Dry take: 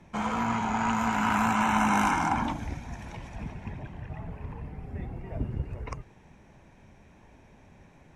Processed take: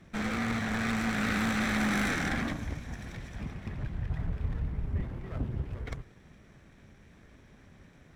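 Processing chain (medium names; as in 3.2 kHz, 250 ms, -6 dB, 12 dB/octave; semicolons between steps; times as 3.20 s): comb filter that takes the minimum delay 0.53 ms; saturation -22.5 dBFS, distortion -14 dB; 3.78–5.02 s: bass shelf 97 Hz +12 dB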